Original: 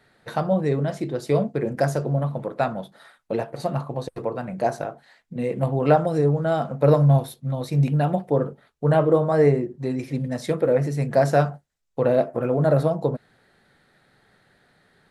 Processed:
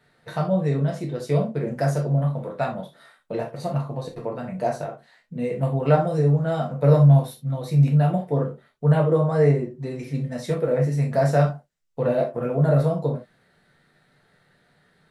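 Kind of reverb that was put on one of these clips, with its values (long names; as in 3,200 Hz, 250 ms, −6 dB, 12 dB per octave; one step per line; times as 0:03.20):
reverb whose tail is shaped and stops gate 100 ms falling, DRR −0.5 dB
level −5 dB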